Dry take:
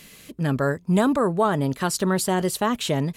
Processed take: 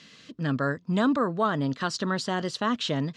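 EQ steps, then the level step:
loudspeaker in its box 150–5,500 Hz, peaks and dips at 180 Hz −5 dB, 390 Hz −9 dB, 590 Hz −5 dB, 840 Hz −8 dB, 2,300 Hz −7 dB
0.0 dB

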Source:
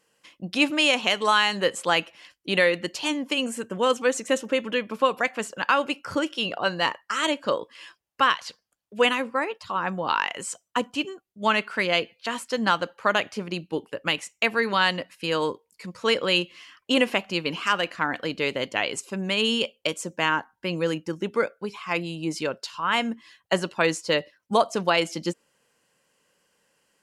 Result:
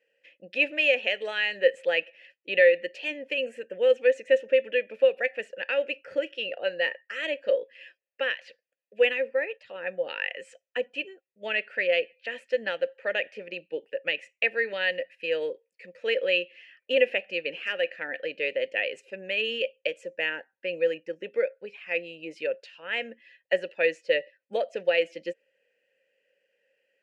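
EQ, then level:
formant filter e
parametric band 2,300 Hz +6.5 dB 0.62 octaves
+4.5 dB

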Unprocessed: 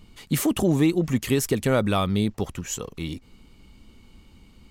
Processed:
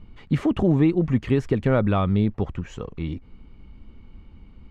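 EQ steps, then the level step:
low-pass filter 2,100 Hz 12 dB per octave
low-shelf EQ 120 Hz +8 dB
0.0 dB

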